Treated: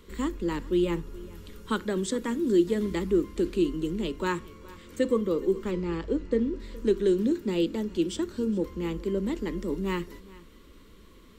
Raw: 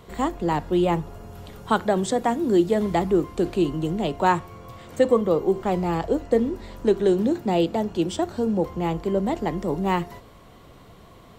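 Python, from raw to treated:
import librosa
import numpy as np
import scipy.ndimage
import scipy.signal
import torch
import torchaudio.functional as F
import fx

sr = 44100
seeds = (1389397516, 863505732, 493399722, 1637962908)

p1 = fx.low_shelf(x, sr, hz=100.0, db=6.5)
p2 = fx.fixed_phaser(p1, sr, hz=300.0, stages=4)
p3 = fx.air_absorb(p2, sr, metres=85.0, at=(5.71, 6.6))
p4 = p3 + fx.echo_single(p3, sr, ms=418, db=-21.0, dry=0)
y = p4 * librosa.db_to_amplitude(-3.0)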